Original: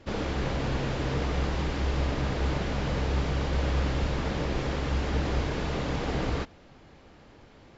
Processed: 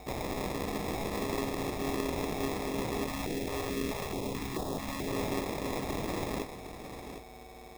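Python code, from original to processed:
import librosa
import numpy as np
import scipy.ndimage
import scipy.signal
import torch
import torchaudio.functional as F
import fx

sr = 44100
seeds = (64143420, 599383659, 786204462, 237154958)

y = fx.band_shelf(x, sr, hz=3100.0, db=13.5, octaves=1.7)
y = fx.dmg_buzz(y, sr, base_hz=400.0, harmonics=7, level_db=-41.0, tilt_db=-5, odd_only=False)
y = y * np.sin(2.0 * np.pi * 340.0 * np.arange(len(y)) / sr)
y = fx.sample_hold(y, sr, seeds[0], rate_hz=1500.0, jitter_pct=0)
y = y + 10.0 ** (-10.0 / 20.0) * np.pad(y, (int(759 * sr / 1000.0), 0))[:len(y)]
y = fx.filter_held_notch(y, sr, hz=4.6, low_hz=210.0, high_hz=2200.0, at=(3.07, 5.07), fade=0.02)
y = y * librosa.db_to_amplitude(-5.5)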